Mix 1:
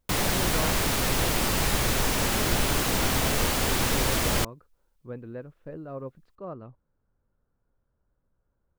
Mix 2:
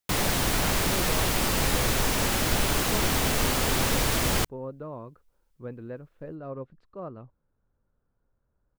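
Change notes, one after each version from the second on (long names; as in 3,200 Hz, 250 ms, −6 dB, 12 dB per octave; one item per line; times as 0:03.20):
speech: entry +0.55 s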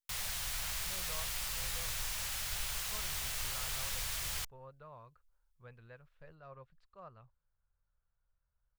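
background −9.0 dB
master: add guitar amp tone stack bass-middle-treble 10-0-10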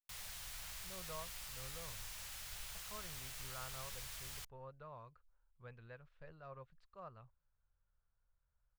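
background −10.5 dB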